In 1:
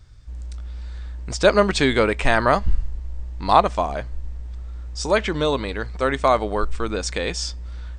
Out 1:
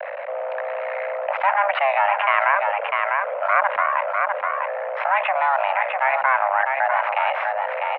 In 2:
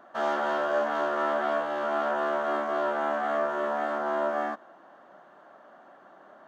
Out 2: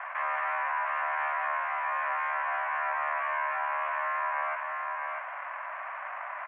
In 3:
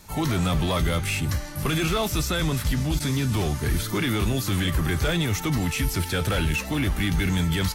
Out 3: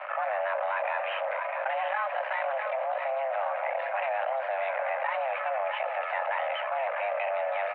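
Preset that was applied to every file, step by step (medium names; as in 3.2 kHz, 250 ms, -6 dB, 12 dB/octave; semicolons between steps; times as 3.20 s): half-wave rectifier; distance through air 190 m; delay 650 ms -12 dB; mistuned SSB +400 Hz 180–2100 Hz; level flattener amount 70%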